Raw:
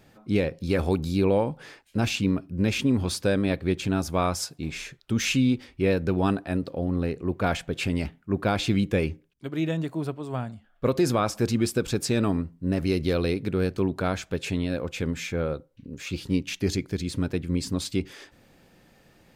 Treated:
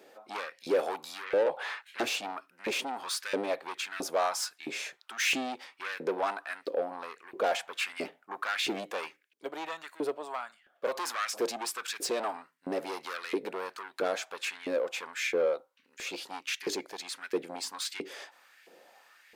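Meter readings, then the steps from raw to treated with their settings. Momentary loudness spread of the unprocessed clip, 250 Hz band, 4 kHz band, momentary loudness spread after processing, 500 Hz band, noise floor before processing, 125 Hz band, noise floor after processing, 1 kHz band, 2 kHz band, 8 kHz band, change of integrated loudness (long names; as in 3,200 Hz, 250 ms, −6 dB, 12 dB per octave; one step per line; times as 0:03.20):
8 LU, −16.5 dB, −2.0 dB, 11 LU, −4.5 dB, −61 dBFS, below −30 dB, −69 dBFS, −1.5 dB, −1.0 dB, −2.0 dB, −7.0 dB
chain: high-pass filter 180 Hz 12 dB per octave
gain on a spectral selection 0:01.46–0:02.03, 320–4,400 Hz +8 dB
soft clipping −27 dBFS, distortion −7 dB
auto-filter high-pass saw up 1.5 Hz 370–2,100 Hz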